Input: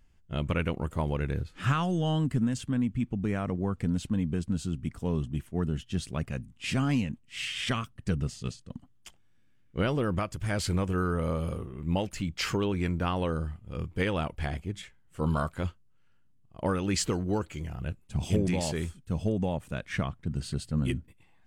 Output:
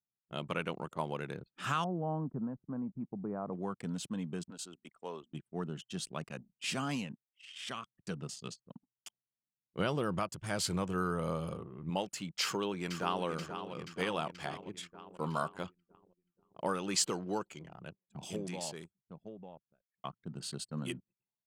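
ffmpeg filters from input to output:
-filter_complex "[0:a]asettb=1/sr,asplit=3[s0][s1][s2];[s0]atrim=end=1.844[s3];[s1]atrim=start=1.84:end=3.53,asetpts=PTS-STARTPTS,afade=t=in:d=0.004:c=qsin,afade=t=out:st=1.686:d=0.004:c=qsin,lowpass=f=1100:w=0.5412,lowpass=f=1100:w=1.3066[s4];[s2]atrim=start=3.526[s5];[s3][s4]acrossfade=d=0.004:c1=hsin:c2=qsin[s6];[s6][s5]acrossfade=d=0.004:c1=qsin:c2=hsin,asplit=3[s7][s8][s9];[s7]afade=t=out:st=4.49:d=0.02[s10];[s8]highpass=430,afade=t=in:st=4.49:d=0.02,afade=t=out:st=5.32:d=0.02[s11];[s9]afade=t=in:st=5.32:d=0.02[s12];[s10][s11][s12]amix=inputs=3:normalize=0,asettb=1/sr,asplit=3[s13][s14][s15];[s13]atrim=end=9.784[s16];[s14]atrim=start=9.78:end=11.9,asetpts=PTS-STARTPTS,afade=t=in:d=0.004:c=qsin,afade=t=out:st=2.116:d=0.004:c=qsin,equalizer=f=64:t=o:w=1.9:g=14.5[s17];[s15]atrim=start=11.896[s18];[s16][s17]acrossfade=d=0.004:c1=hsin:c2=qsin[s19];[s19][s18]acrossfade=d=0.004:c1=qsin:c2=hsin,asplit=2[s20][s21];[s21]afade=t=in:st=12.42:d=0.01,afade=t=out:st=13.25:d=0.01,aecho=0:1:480|960|1440|1920|2400|2880|3360|3840|4320|4800|5280:0.354813|0.248369|0.173859|0.121701|0.0851907|0.0596335|0.0417434|0.0292204|0.0204543|0.014318|0.0100226[s22];[s20][s22]amix=inputs=2:normalize=0,asplit=3[s23][s24][s25];[s23]atrim=end=7.23,asetpts=PTS-STARTPTS,afade=t=out:st=7.226:d=0.004:c=hsin[s26];[s24]atrim=start=7.23:end=20.04,asetpts=PTS-STARTPTS,afade=t=in:d=1.03,afade=t=out:st=10.12:d=2.69[s27];[s25]atrim=start=20.04,asetpts=PTS-STARTPTS,afade=t=in:d=0.004:c=hsin[s28];[s26][s27][s28]concat=n=3:v=0:a=1,highpass=f=190:w=0.5412,highpass=f=190:w=1.3066,anlmdn=0.0251,equalizer=f=250:t=o:w=1:g=-10,equalizer=f=500:t=o:w=1:g=-4,equalizer=f=2000:t=o:w=1:g=-7,volume=1.12"

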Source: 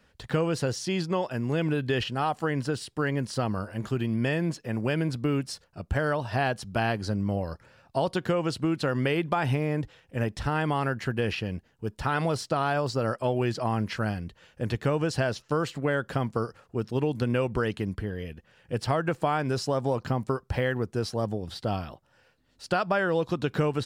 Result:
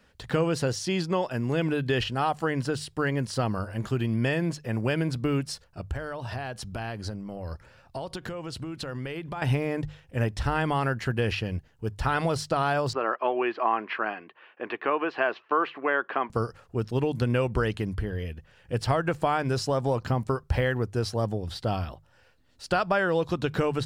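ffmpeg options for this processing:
-filter_complex "[0:a]asettb=1/sr,asplit=3[s0][s1][s2];[s0]atrim=end=5.854[s3];[s1]atrim=start=5.85:end=9.42,asetpts=PTS-STARTPTS,afade=t=in:d=0.004:c=qsin,afade=t=out:st=3.566:d=0.004:c=qsin,acompressor=threshold=0.0251:ratio=6:attack=3.2:release=140:knee=1:detection=peak[s4];[s2]atrim=start=9.416[s5];[s3][s4]acrossfade=d=0.004:c1=hsin:c2=qsin[s6];[s6][s5]acrossfade=d=0.004:c1=qsin:c2=hsin,asettb=1/sr,asplit=3[s7][s8][s9];[s7]atrim=end=12.934[s10];[s8]atrim=start=12.93:end=16.3,asetpts=PTS-STARTPTS,afade=t=in:d=0.004:c=qsin,afade=t=out:st=3.366:d=0.004:c=qsin,highpass=f=310:w=0.5412,highpass=f=310:w=1.3066,equalizer=f=360:t=q:w=4:g=3,equalizer=f=520:t=q:w=4:g=-5,equalizer=f=740:t=q:w=4:g=3,equalizer=f=1100:t=q:w=4:g=9,equalizer=f=1700:t=q:w=4:g=3,equalizer=f=2500:t=q:w=4:g=5,lowpass=f=2900:w=0.5412,lowpass=f=2900:w=1.3066[s11];[s9]atrim=start=16.296[s12];[s10][s11]acrossfade=d=0.004:c1=hsin:c2=qsin[s13];[s13][s12]acrossfade=d=0.004:c1=qsin:c2=hsin,bandreject=f=50:t=h:w=6,bandreject=f=100:t=h:w=6,bandreject=f=150:t=h:w=6,asubboost=boost=2.5:cutoff=99,volume=1.19"

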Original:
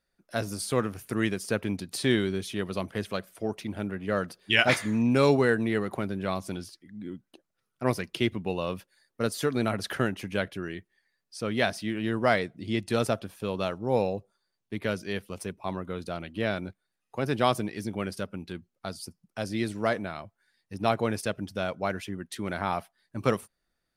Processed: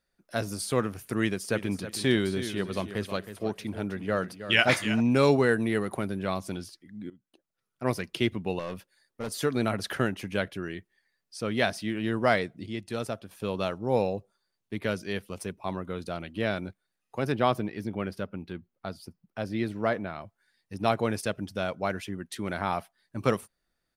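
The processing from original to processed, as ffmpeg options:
-filter_complex "[0:a]asplit=3[s0][s1][s2];[s0]afade=t=out:st=1.52:d=0.02[s3];[s1]aecho=1:1:318|636|954:0.266|0.0639|0.0153,afade=t=in:st=1.52:d=0.02,afade=t=out:st=4.99:d=0.02[s4];[s2]afade=t=in:st=4.99:d=0.02[s5];[s3][s4][s5]amix=inputs=3:normalize=0,asettb=1/sr,asplit=3[s6][s7][s8];[s6]atrim=end=5.504[s9];[s7]atrim=start=5.5:end=6.2,asetpts=PTS-STARTPTS,afade=t=in:d=0.004:c=qsin,afade=t=out:st=0.696:d=0.004:c=qsin,equalizer=f=10000:t=o:w=0.36:g=10[s10];[s8]atrim=start=6.196[s11];[s9][s10]acrossfade=d=0.004:c1=hsin:c2=qsin[s12];[s12][s11]acrossfade=d=0.004:c1=qsin:c2=hsin,asettb=1/sr,asplit=3[s13][s14][s15];[s13]atrim=end=8.594[s16];[s14]atrim=start=8.59:end=9.31,asetpts=PTS-STARTPTS,afade=t=in:d=0.004:c=qsin,afade=t=out:st=0.716:d=0.004:c=qsin,aeval=exprs='(tanh(28.2*val(0)+0.4)-tanh(0.4))/28.2':c=same[s17];[s15]atrim=start=9.306[s18];[s16][s17]acrossfade=d=0.004:c1=hsin:c2=qsin[s19];[s19][s18]acrossfade=d=0.004:c1=qsin:c2=hsin,asettb=1/sr,asplit=3[s20][s21][s22];[s20]atrim=end=17.324[s23];[s21]atrim=start=17.32:end=20.21,asetpts=PTS-STARTPTS,afade=t=in:d=0.004:c=qsin,afade=t=out:st=2.886:d=0.004:c=qsin,equalizer=f=8000:w=0.68:g=-13.5[s24];[s22]atrim=start=20.206[s25];[s23][s24]acrossfade=d=0.004:c1=hsin:c2=qsin[s26];[s26][s25]acrossfade=d=0.004:c1=qsin:c2=hsin,asplit=4[s27][s28][s29][s30];[s27]atrim=end=7.1,asetpts=PTS-STARTPTS,afade=t=out:st=7.096:d=0.004:c=hsin:silence=0.141254[s31];[s28]atrim=start=7.1:end=12.662,asetpts=PTS-STARTPTS,afade=t=in:d=0.97:silence=0.141254[s32];[s29]atrim=start=12.658:end=13.312,asetpts=PTS-STARTPTS,volume=0.473[s33];[s30]atrim=start=13.308[s34];[s31][s32]concat=n=2:v=0:a=1[s35];[s35][s33]acrossfade=d=0.004:c1=hsin:c2=hsin[s36];[s36][s34]acrossfade=d=0.004:c1=hsin:c2=hsin"

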